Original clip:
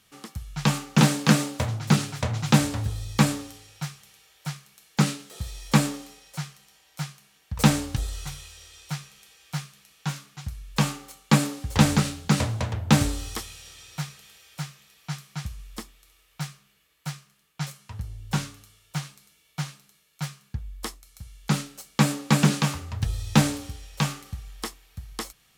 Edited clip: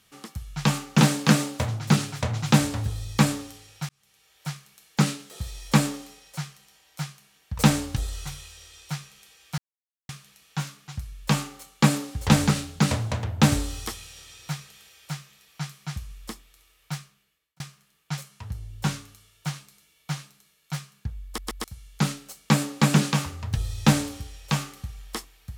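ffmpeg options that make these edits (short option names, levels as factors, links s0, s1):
-filter_complex "[0:a]asplit=7[s0][s1][s2][s3][s4][s5][s6];[s0]atrim=end=3.89,asetpts=PTS-STARTPTS,afade=t=out:st=3.886:d=0.004:c=hsin[s7];[s1]atrim=start=3.89:end=9.58,asetpts=PTS-STARTPTS,afade=t=in:d=0.6,afade=t=out:st=5.686:d=0.004:c=hsin,apad=pad_dur=0.51[s8];[s2]atrim=start=9.58:end=17.09,asetpts=PTS-STARTPTS,afade=t=in:d=0.004:c=hsin,afade=t=out:st=6.85:d=0.66[s9];[s3]atrim=start=17.09:end=20.872,asetpts=PTS-STARTPTS,afade=t=in:d=0.004:c=hsin[s10];[s4]atrim=start=20.738:end=20.872[s11];[s5]atrim=start=20.738:end=20.872[s12];[s6]atrim=start=21.128[s13];[s7][s8][s9][s10]concat=n=4:v=0:a=1[s14];[s14][s11]acrossfade=d=0.004:c1=hsin:c2=hsin[s15];[s15][s12]acrossfade=d=0.004:c1=hsin:c2=hsin[s16];[s16][s13]acrossfade=d=0.004:c1=hsin:c2=hsin"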